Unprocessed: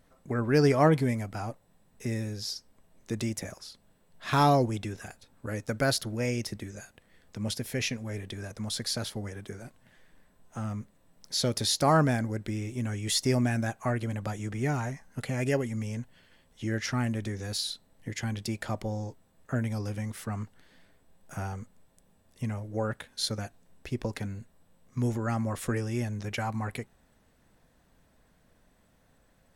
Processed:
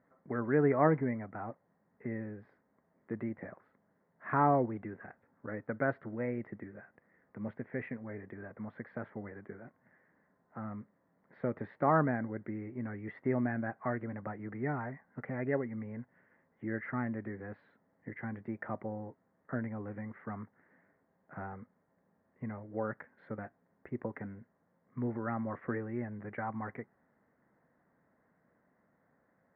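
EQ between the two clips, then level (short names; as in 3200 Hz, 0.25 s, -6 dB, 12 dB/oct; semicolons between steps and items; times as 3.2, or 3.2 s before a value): HPF 170 Hz 12 dB/oct; Chebyshev low-pass 2000 Hz, order 5; -3.5 dB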